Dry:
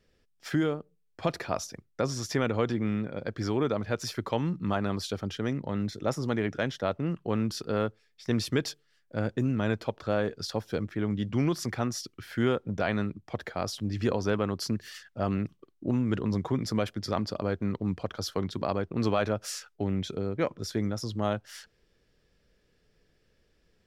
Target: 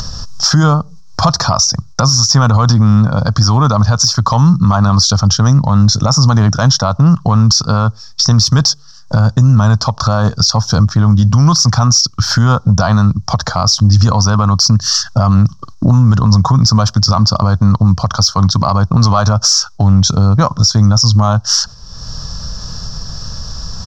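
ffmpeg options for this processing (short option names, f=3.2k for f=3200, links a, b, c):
-af "agate=range=-6dB:threshold=-59dB:ratio=16:detection=peak,firequalizer=gain_entry='entry(130,0);entry(370,-26);entry(650,-10);entry(1100,1);entry(2100,-28);entry(3900,-6);entry(5500,9);entry(9200,-22)':delay=0.05:min_phase=1,acompressor=mode=upward:threshold=-28dB:ratio=2.5,asoftclip=type=tanh:threshold=-16dB,alimiter=level_in=27.5dB:limit=-1dB:release=50:level=0:latency=1,volume=-1dB"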